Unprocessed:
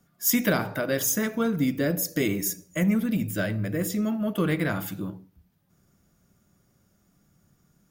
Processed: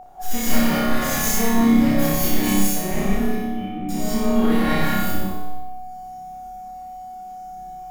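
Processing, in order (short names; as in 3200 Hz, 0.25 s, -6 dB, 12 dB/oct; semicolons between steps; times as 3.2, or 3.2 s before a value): minimum comb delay 3.6 ms; low shelf 170 Hz +10.5 dB; in parallel at +2.5 dB: compressor, threshold -31 dBFS, peak gain reduction 14.5 dB; 3.13–3.89 on the sum: vocal tract filter i; resonator bank D#3 minor, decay 0.27 s; whine 740 Hz -45 dBFS; soft clip -31.5 dBFS, distortion -10 dB; on a send: flutter echo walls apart 5.2 m, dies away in 1 s; on the sum: non-linear reverb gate 0.24 s rising, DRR -6.5 dB; gain +8.5 dB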